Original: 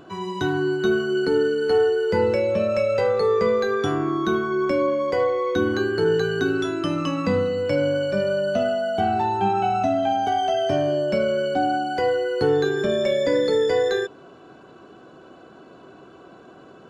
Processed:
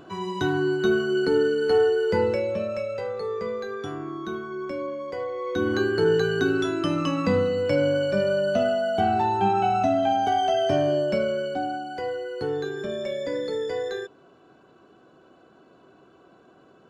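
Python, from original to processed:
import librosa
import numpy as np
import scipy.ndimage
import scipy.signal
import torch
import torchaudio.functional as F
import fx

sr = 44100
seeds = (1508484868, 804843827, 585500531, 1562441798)

y = fx.gain(x, sr, db=fx.line((2.08, -1.0), (3.01, -10.0), (5.27, -10.0), (5.77, -0.5), (10.97, -0.5), (11.82, -8.5)))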